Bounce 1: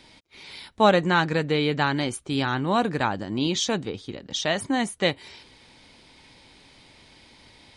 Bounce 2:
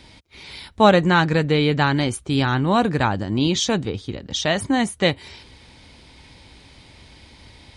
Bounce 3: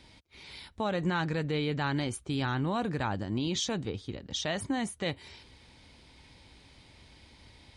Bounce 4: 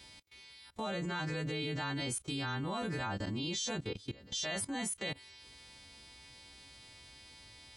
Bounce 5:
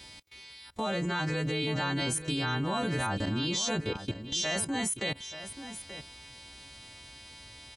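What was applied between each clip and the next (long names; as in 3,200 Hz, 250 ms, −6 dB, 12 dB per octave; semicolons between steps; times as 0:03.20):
parametric band 64 Hz +11.5 dB 1.9 octaves; level +3.5 dB
brickwall limiter −12 dBFS, peak gain reduction 11 dB; level −9 dB
every partial snapped to a pitch grid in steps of 2 semitones; output level in coarse steps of 19 dB; level +1.5 dB
single-tap delay 882 ms −12 dB; level +6 dB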